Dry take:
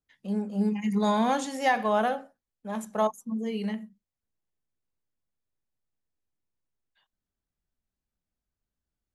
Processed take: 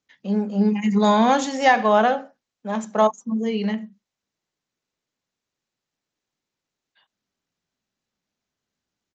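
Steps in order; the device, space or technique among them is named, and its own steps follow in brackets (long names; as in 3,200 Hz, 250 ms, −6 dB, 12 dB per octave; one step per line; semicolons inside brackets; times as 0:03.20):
Bluetooth headset (high-pass filter 150 Hz 12 dB per octave; downsampling to 16,000 Hz; level +8 dB; SBC 64 kbit/s 16,000 Hz)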